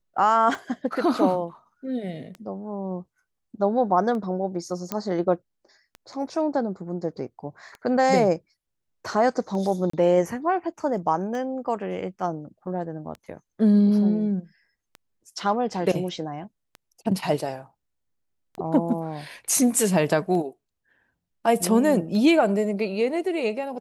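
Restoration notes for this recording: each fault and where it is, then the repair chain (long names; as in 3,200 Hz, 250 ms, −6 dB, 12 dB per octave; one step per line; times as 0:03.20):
scratch tick 33 1/3 rpm
0:04.92: click −12 dBFS
0:09.90–0:09.93: drop-out 34 ms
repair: click removal
repair the gap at 0:09.90, 34 ms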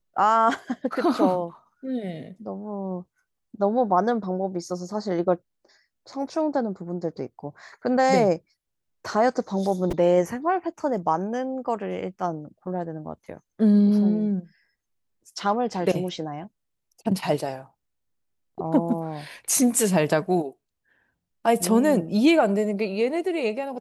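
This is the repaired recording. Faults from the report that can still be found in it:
none of them is left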